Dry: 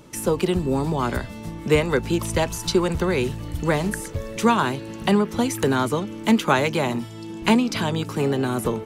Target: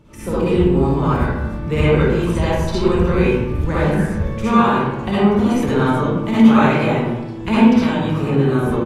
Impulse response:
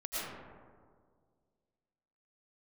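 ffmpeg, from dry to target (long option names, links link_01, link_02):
-filter_complex "[0:a]bass=frequency=250:gain=7,treble=frequency=4000:gain=-9,asplit=2[link_01][link_02];[link_02]adelay=28,volume=-12dB[link_03];[link_01][link_03]amix=inputs=2:normalize=0[link_04];[1:a]atrim=start_sample=2205,asetrate=83790,aresample=44100[link_05];[link_04][link_05]afir=irnorm=-1:irlink=0,volume=4dB"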